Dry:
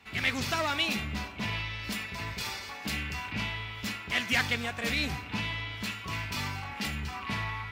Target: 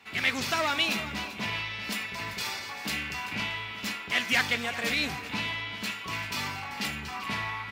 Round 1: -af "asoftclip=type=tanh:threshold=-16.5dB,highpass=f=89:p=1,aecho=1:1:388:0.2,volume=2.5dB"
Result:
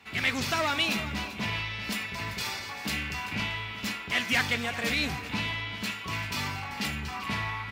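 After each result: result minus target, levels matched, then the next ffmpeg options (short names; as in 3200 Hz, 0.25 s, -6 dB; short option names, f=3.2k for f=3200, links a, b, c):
soft clip: distortion +14 dB; 125 Hz band +5.0 dB
-af "asoftclip=type=tanh:threshold=-8.5dB,highpass=f=89:p=1,aecho=1:1:388:0.2,volume=2.5dB"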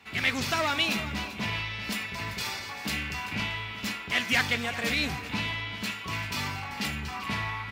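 125 Hz band +5.0 dB
-af "asoftclip=type=tanh:threshold=-8.5dB,highpass=f=89:p=1,lowshelf=f=140:g=-9,aecho=1:1:388:0.2,volume=2.5dB"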